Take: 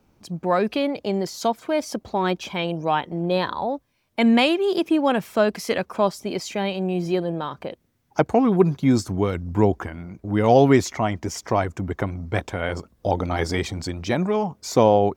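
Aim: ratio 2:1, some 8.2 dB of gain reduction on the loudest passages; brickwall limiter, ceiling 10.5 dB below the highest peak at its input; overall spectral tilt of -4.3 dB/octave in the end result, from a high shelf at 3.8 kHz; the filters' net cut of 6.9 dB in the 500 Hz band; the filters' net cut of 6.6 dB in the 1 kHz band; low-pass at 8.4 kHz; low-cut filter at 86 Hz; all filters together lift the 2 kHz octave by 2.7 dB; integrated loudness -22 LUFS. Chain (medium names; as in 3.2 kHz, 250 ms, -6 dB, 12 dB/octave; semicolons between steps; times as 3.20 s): high-pass 86 Hz; low-pass 8.4 kHz; peaking EQ 500 Hz -7.5 dB; peaking EQ 1 kHz -7 dB; peaking EQ 2 kHz +3.5 dB; treble shelf 3.8 kHz +7.5 dB; compression 2:1, threshold -30 dBFS; trim +10.5 dB; peak limiter -11 dBFS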